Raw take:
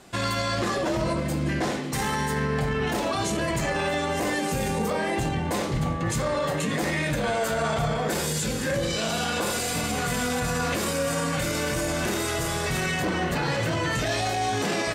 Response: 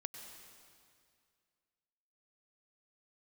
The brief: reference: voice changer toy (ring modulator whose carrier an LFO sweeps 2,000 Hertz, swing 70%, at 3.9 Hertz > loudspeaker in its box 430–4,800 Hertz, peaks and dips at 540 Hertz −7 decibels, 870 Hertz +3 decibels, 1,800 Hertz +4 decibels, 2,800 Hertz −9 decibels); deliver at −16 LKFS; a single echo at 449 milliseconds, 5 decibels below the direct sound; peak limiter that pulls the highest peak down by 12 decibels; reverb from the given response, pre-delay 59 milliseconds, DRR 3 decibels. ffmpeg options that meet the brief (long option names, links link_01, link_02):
-filter_complex "[0:a]alimiter=level_in=3dB:limit=-24dB:level=0:latency=1,volume=-3dB,aecho=1:1:449:0.562,asplit=2[link_01][link_02];[1:a]atrim=start_sample=2205,adelay=59[link_03];[link_02][link_03]afir=irnorm=-1:irlink=0,volume=-0.5dB[link_04];[link_01][link_04]amix=inputs=2:normalize=0,aeval=exprs='val(0)*sin(2*PI*2000*n/s+2000*0.7/3.9*sin(2*PI*3.9*n/s))':channel_layout=same,highpass=430,equalizer=frequency=540:width_type=q:width=4:gain=-7,equalizer=frequency=870:width_type=q:width=4:gain=3,equalizer=frequency=1800:width_type=q:width=4:gain=4,equalizer=frequency=2800:width_type=q:width=4:gain=-9,lowpass=frequency=4800:width=0.5412,lowpass=frequency=4800:width=1.3066,volume=19dB"